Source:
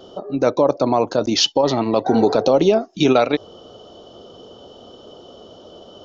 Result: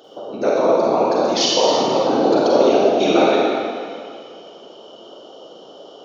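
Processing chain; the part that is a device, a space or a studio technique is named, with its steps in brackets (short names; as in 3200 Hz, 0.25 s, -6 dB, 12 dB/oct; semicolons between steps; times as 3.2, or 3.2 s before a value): whispering ghost (whisperiser; HPF 290 Hz 12 dB/oct; reverb RT60 2.2 s, pre-delay 35 ms, DRR -5 dB); gain -4 dB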